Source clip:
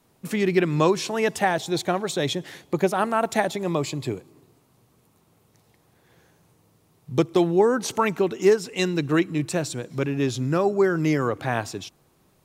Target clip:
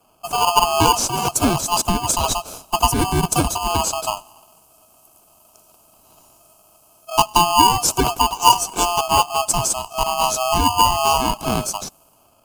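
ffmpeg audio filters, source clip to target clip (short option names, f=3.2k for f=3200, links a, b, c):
-filter_complex "[0:a]afftfilt=real='real(if(lt(b,1008),b+24*(1-2*mod(floor(b/24),2)),b),0)':imag='imag(if(lt(b,1008),b+24*(1-2*mod(floor(b/24),2)),b),0)':win_size=2048:overlap=0.75,adynamicequalizer=threshold=0.00562:dfrequency=120:dqfactor=3.2:tfrequency=120:tqfactor=3.2:attack=5:release=100:ratio=0.375:range=2.5:mode=cutabove:tftype=bell,acrossover=split=260|5800[a][b][c];[b]acrusher=samples=23:mix=1:aa=0.000001[d];[c]dynaudnorm=f=300:g=5:m=13dB[e];[a][d][e]amix=inputs=3:normalize=0,volume=4.5dB"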